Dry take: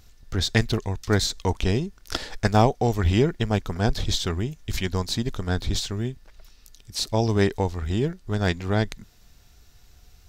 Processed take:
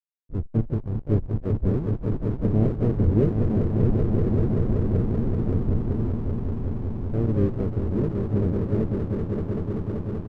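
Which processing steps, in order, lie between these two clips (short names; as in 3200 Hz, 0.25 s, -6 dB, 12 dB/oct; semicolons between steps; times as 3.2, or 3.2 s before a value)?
inverse Chebyshev low-pass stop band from 1500 Hz, stop band 60 dB; on a send: swelling echo 0.192 s, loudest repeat 5, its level -7 dB; on the sum: backlash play -28.5 dBFS; harmoniser +5 st -11 dB; gain -1 dB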